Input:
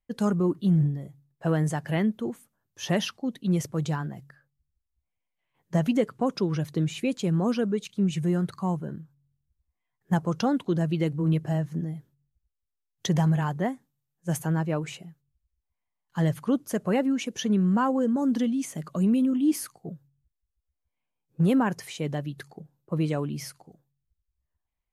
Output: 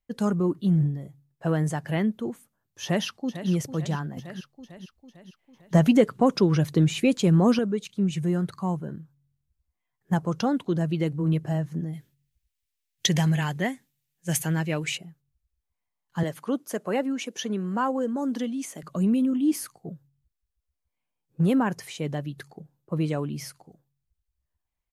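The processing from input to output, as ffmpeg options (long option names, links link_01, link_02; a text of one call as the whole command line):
ffmpeg -i in.wav -filter_complex "[0:a]asplit=2[link_01][link_02];[link_02]afade=type=in:start_time=2.83:duration=0.01,afade=type=out:start_time=3.5:duration=0.01,aecho=0:1:450|900|1350|1800|2250|2700:0.251189|0.138154|0.0759846|0.0417915|0.0229853|0.0126419[link_03];[link_01][link_03]amix=inputs=2:normalize=0,asettb=1/sr,asplit=3[link_04][link_05][link_06];[link_04]atrim=end=4.174[link_07];[link_05]atrim=start=4.17:end=7.59,asetpts=PTS-STARTPTS,afade=type=in:duration=0.004:curve=qsin,afade=type=out:start_time=3.416:duration=0.004:curve=qsin,acontrast=48[link_08];[link_06]atrim=start=7.586[link_09];[link_07][link_08]acrossfade=duration=0.004:curve1=hsin:curve2=qsin[link_10];[link_10][link_09]acrossfade=duration=0.004:curve1=qsin:curve2=hsin,asettb=1/sr,asplit=3[link_11][link_12][link_13];[link_11]atrim=end=11.934[link_14];[link_12]atrim=start=11.93:end=14.98,asetpts=PTS-STARTPTS,afade=type=in:duration=0.004:curve=qsin,afade=type=out:start_time=3.046:duration=0.004:curve=qsin,highshelf=frequency=1600:width_type=q:width=1.5:gain=8.5[link_15];[link_13]atrim=start=14.976[link_16];[link_14][link_15]acrossfade=duration=0.004:curve1=hsin:curve2=qsin[link_17];[link_17][link_16]acrossfade=duration=0.004:curve1=qsin:curve2=hsin,asettb=1/sr,asplit=3[link_18][link_19][link_20];[link_18]atrim=end=16.234[link_21];[link_19]atrim=start=16.23:end=18.83,asetpts=PTS-STARTPTS,afade=type=in:duration=0.004:curve=qsin,afade=type=out:start_time=2.596:duration=0.004:curve=qsin,highpass=280[link_22];[link_20]atrim=start=18.826[link_23];[link_21][link_22]acrossfade=duration=0.004:curve1=hsin:curve2=qsin[link_24];[link_24][link_23]acrossfade=duration=0.004:curve1=qsin:curve2=hsin" out.wav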